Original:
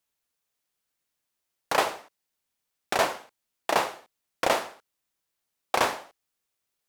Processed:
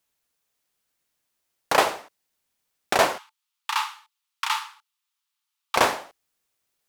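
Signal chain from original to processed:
0:03.18–0:05.76: Chebyshev high-pass with heavy ripple 850 Hz, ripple 6 dB
level +4.5 dB

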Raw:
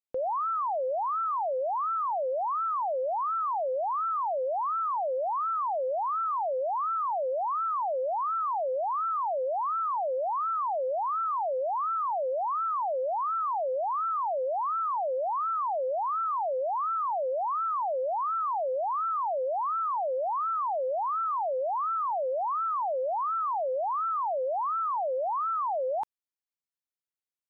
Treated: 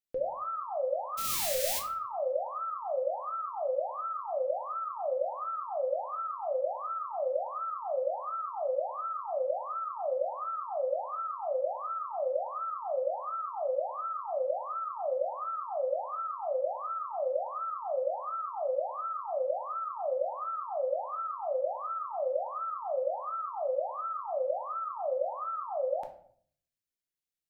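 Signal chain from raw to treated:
0:01.17–0:01.78: spectral envelope flattened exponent 0.1
parametric band 1,000 Hz −14.5 dB 0.78 octaves
rectangular room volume 70 cubic metres, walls mixed, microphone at 0.51 metres

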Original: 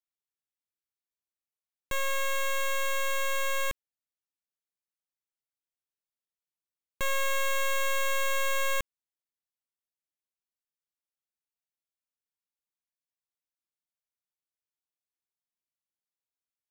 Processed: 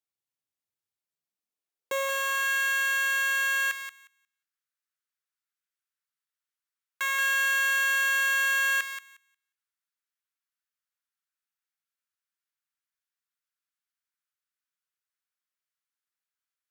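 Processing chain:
feedback echo with a high-pass in the loop 179 ms, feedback 15%, high-pass 1,100 Hz, level −7 dB
harmonic generator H 4 −13 dB, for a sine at −16.5 dBFS
high-pass filter sweep 100 Hz → 1,400 Hz, 0:01.02–0:02.50

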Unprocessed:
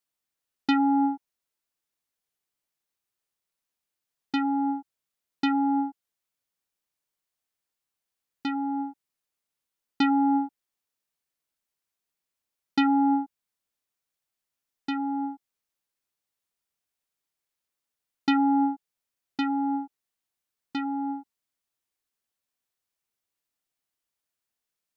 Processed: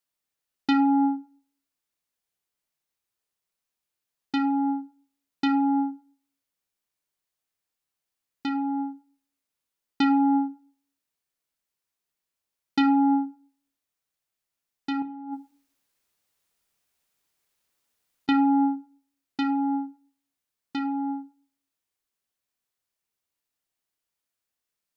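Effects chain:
0:15.02–0:18.29: compressor whose output falls as the input rises −39 dBFS, ratio −1
convolution reverb RT60 0.40 s, pre-delay 29 ms, DRR 10 dB

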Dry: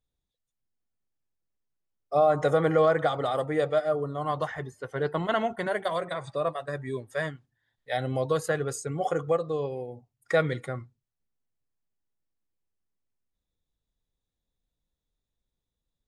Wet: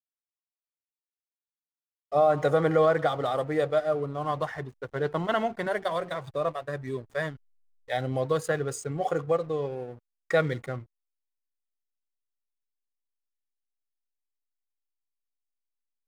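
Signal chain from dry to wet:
slack as between gear wheels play −43 dBFS

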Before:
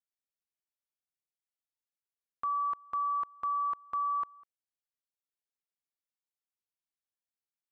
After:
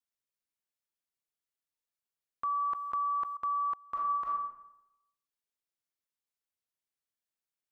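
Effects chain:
notch filter 780 Hz, Q 14
0:02.62–0:03.37: envelope flattener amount 70%
0:03.89–0:04.32: thrown reverb, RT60 0.89 s, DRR −4.5 dB

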